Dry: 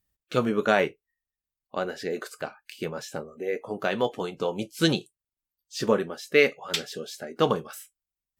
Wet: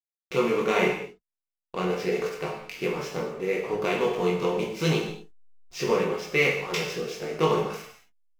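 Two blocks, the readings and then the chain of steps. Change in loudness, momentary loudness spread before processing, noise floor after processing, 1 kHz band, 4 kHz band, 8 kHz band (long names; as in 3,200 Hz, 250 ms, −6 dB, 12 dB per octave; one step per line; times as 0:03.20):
+0.5 dB, 14 LU, below −85 dBFS, +1.0 dB, −2.0 dB, −0.5 dB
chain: compressor on every frequency bin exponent 0.6
EQ curve with evenly spaced ripples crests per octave 0.79, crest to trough 9 dB
chorus effect 0.8 Hz, delay 19 ms, depth 3.8 ms
slack as between gear wheels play −33.5 dBFS
reverb whose tail is shaped and stops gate 260 ms falling, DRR −0.5 dB
level −4 dB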